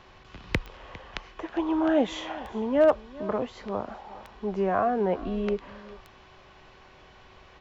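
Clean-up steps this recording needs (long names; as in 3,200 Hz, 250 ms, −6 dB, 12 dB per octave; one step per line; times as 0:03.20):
clipped peaks rebuilt −12.5 dBFS
click removal
hum removal 377 Hz, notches 11
echo removal 404 ms −19 dB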